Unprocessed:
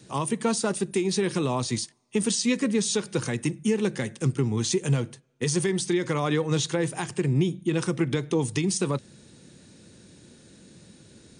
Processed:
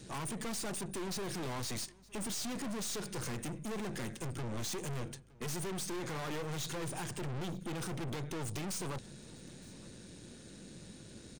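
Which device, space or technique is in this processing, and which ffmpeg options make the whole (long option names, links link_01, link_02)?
valve amplifier with mains hum: -filter_complex "[0:a]asettb=1/sr,asplit=3[link_01][link_02][link_03];[link_01]atrim=end=6.164[link_04];[link_02]atrim=start=6.16:end=7.57,asetpts=PTS-STARTPTS,afade=type=in:duration=0.004:curve=qsin,afade=type=out:start_time=1.406:duration=0.004:curve=qsin,highpass=frequency=45:width=0.5412,highpass=frequency=45:width=1.3066[link_05];[link_03]atrim=start=7.566[link_06];[link_04][link_05]acrossfade=duration=0.004:curve1=hsin:curve2=qsin[link_07];[link_07][link_06]acrossfade=duration=0.004:curve1=qsin:curve2=hsin,aeval=exprs='(tanh(100*val(0)+0.55)-tanh(0.55))/100':channel_layout=same,aeval=exprs='val(0)+0.000501*(sin(2*PI*50*n/s)+sin(2*PI*2*50*n/s)/2+sin(2*PI*3*50*n/s)/3+sin(2*PI*4*50*n/s)/4+sin(2*PI*5*50*n/s)/5)':channel_layout=same,aecho=1:1:915:0.0668,volume=2dB"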